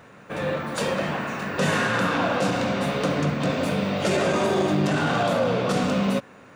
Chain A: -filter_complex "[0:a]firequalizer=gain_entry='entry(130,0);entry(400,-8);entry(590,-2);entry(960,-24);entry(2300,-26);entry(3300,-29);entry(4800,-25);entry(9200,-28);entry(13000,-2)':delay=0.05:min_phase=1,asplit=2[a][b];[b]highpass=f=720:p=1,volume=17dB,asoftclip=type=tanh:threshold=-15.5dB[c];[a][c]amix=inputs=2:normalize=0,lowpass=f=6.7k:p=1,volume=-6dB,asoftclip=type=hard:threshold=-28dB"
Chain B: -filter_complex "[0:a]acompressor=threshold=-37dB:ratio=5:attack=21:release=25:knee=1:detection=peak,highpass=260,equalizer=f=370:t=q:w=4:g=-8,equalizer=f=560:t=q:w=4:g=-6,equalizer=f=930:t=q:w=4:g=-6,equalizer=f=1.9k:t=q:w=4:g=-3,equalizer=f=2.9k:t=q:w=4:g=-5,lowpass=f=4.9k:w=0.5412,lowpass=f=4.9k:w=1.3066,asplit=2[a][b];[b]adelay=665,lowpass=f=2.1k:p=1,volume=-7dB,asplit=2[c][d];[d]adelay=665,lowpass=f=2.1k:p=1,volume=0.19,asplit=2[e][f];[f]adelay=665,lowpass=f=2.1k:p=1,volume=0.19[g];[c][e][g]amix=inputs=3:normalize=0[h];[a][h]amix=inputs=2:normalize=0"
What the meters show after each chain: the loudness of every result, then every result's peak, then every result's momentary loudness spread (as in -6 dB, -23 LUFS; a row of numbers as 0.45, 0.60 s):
-30.5, -37.5 LUFS; -28.0, -24.0 dBFS; 3, 3 LU